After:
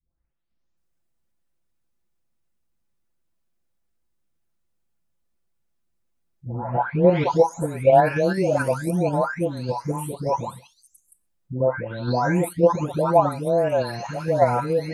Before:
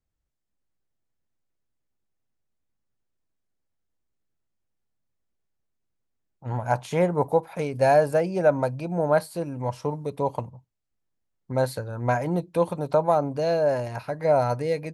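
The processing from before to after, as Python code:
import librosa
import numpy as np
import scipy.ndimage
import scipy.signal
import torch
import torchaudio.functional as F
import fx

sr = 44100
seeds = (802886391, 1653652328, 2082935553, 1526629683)

p1 = fx.spec_delay(x, sr, highs='late', ms=772)
p2 = fx.dynamic_eq(p1, sr, hz=300.0, q=7.3, threshold_db=-46.0, ratio=4.0, max_db=4)
p3 = fx.level_steps(p2, sr, step_db=10)
y = p2 + (p3 * librosa.db_to_amplitude(3.0))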